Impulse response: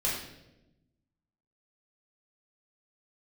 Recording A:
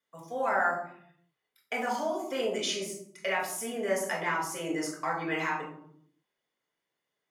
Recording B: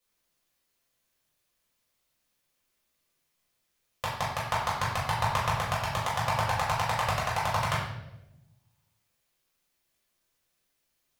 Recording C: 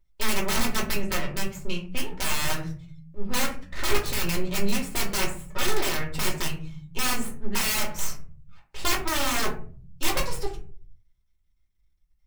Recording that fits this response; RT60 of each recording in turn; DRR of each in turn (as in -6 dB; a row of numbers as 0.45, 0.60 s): B; 0.65, 0.95, 0.40 s; -2.5, -7.5, -2.5 dB